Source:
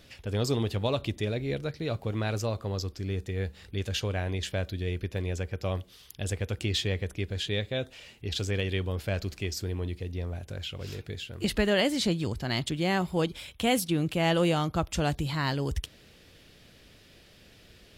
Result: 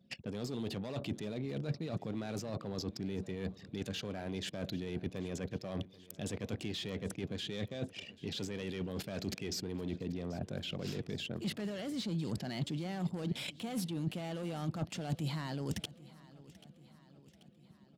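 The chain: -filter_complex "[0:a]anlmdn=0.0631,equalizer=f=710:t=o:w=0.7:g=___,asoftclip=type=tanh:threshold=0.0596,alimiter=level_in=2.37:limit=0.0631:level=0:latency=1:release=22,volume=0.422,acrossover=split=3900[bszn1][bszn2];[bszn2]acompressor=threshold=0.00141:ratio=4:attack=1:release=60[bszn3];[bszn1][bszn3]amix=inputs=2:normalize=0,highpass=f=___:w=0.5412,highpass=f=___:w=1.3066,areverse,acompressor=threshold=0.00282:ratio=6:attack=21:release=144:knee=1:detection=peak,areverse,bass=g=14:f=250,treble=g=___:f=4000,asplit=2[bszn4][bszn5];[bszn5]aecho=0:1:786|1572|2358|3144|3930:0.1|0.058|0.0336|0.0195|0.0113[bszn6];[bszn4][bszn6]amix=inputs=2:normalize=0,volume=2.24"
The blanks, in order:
4.5, 180, 180, 10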